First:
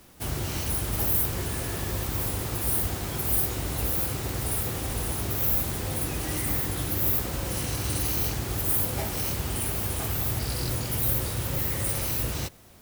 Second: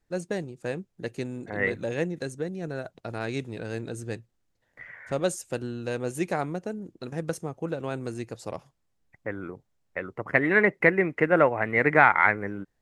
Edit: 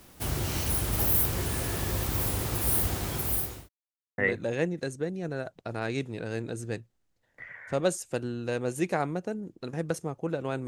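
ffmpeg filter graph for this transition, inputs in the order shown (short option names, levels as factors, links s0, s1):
-filter_complex "[0:a]apad=whole_dur=10.67,atrim=end=10.67,asplit=2[s0][s1];[s0]atrim=end=3.69,asetpts=PTS-STARTPTS,afade=t=out:st=2.9:d=0.79:c=qsin[s2];[s1]atrim=start=3.69:end=4.18,asetpts=PTS-STARTPTS,volume=0[s3];[1:a]atrim=start=1.57:end=8.06,asetpts=PTS-STARTPTS,afade=t=in:d=0.004:c=hsin[s4];[s2][s3][s4]concat=n=3:v=0:a=1"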